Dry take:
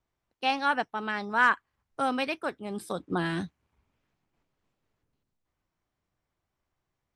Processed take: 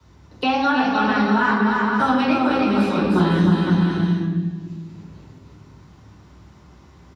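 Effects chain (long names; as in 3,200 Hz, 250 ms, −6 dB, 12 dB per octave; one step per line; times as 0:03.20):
brickwall limiter −18.5 dBFS, peak gain reduction 8 dB
bouncing-ball delay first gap 310 ms, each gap 0.65×, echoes 5
convolution reverb RT60 1.2 s, pre-delay 3 ms, DRR −9 dB
multiband upward and downward compressor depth 70%
level −3.5 dB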